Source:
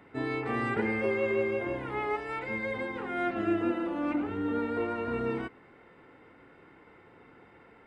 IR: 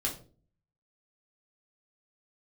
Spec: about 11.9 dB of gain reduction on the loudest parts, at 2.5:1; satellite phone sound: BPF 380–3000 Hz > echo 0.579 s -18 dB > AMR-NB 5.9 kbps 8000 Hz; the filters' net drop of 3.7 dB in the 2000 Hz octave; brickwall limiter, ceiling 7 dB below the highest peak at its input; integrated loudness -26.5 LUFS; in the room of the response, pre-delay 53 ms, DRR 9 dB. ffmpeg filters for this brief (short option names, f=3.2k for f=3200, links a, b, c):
-filter_complex "[0:a]equalizer=f=2k:t=o:g=-3.5,acompressor=threshold=-43dB:ratio=2.5,alimiter=level_in=11.5dB:limit=-24dB:level=0:latency=1,volume=-11.5dB,asplit=2[a][b];[1:a]atrim=start_sample=2205,adelay=53[c];[b][c]afir=irnorm=-1:irlink=0,volume=-13.5dB[d];[a][d]amix=inputs=2:normalize=0,highpass=380,lowpass=3k,aecho=1:1:579:0.126,volume=21dB" -ar 8000 -c:a libopencore_amrnb -b:a 5900